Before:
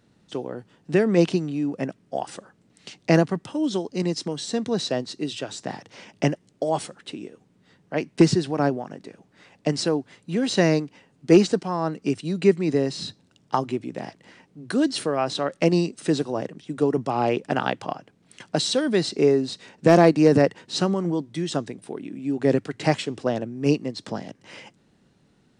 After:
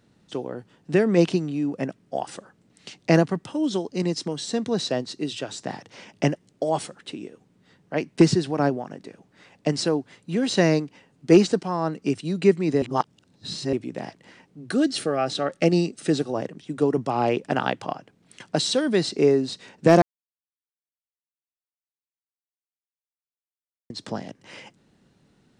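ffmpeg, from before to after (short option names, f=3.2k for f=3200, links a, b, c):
-filter_complex "[0:a]asettb=1/sr,asplit=3[a][b][c];[a]atrim=end=14.704[d];[b]atrim=start=14.7:end=16.34,asetpts=PTS-STARTPTS,afade=t=in:d=0.004:c=qsin,afade=t=out:st=1.636:d=0.004:c=qsin,asuperstop=centerf=990:order=20:qfactor=5.5[e];[c]atrim=start=16.336[f];[d][e]acrossfade=d=0.004:c1=hsin:c2=qsin[g];[g][f]acrossfade=d=0.004:c1=qsin:c2=hsin,asplit=5[h][i][j][k][l];[h]atrim=end=12.822[m];[i]atrim=start=12.818:end=13.732,asetpts=PTS-STARTPTS,areverse[n];[j]atrim=start=13.728:end=20.02,asetpts=PTS-STARTPTS,afade=t=out:st=6.288:d=0.004:c=hsin[o];[k]atrim=start=20.02:end=23.9,asetpts=PTS-STARTPTS,volume=0[p];[l]atrim=start=23.9,asetpts=PTS-STARTPTS,afade=t=in:d=0.004:c=hsin[q];[m][n]acrossfade=d=0.004:c1=hsin:c2=hsin[r];[o][p][q]concat=n=3:v=0:a=1[s];[r][s]acrossfade=d=0.004:c1=hsin:c2=hsin"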